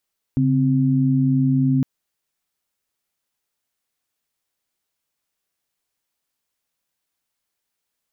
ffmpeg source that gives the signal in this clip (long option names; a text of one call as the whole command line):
ffmpeg -f lavfi -i "aevalsrc='0.133*(sin(2*PI*138.59*t)+sin(2*PI*261.63*t))':duration=1.46:sample_rate=44100" out.wav